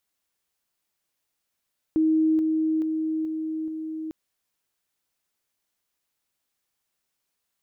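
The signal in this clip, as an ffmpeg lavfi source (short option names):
-f lavfi -i "aevalsrc='pow(10,(-17.5-3*floor(t/0.43))/20)*sin(2*PI*316*t)':d=2.15:s=44100"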